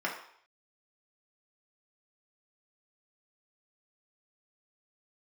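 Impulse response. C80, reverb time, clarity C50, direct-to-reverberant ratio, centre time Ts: 9.5 dB, 0.60 s, 6.5 dB, −3.5 dB, 28 ms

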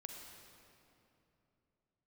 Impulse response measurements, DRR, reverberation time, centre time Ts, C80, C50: 2.0 dB, 2.9 s, 87 ms, 3.5 dB, 2.5 dB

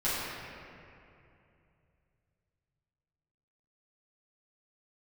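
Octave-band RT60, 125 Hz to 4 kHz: 4.1, 3.0, 2.8, 2.5, 2.4, 1.6 seconds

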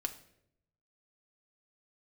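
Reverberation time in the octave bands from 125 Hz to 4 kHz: 1.2, 0.95, 0.90, 0.60, 0.65, 0.55 seconds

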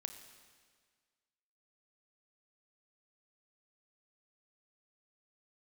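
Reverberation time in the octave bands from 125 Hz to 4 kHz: 1.7, 1.7, 1.7, 1.7, 1.7, 1.6 seconds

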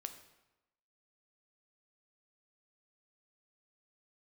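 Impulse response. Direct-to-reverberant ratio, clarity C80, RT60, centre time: 7.5 dB, 12.5 dB, 1.0 s, 13 ms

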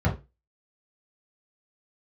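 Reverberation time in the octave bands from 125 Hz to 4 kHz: 0.25, 0.25, 0.25, 0.20, 0.25, 0.20 seconds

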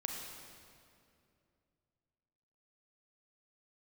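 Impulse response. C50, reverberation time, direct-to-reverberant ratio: 2.0 dB, 2.5 s, 0.5 dB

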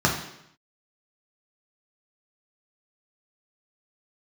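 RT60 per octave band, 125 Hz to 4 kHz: 0.80, 0.80, 0.80, 0.75, 0.80, 0.75 seconds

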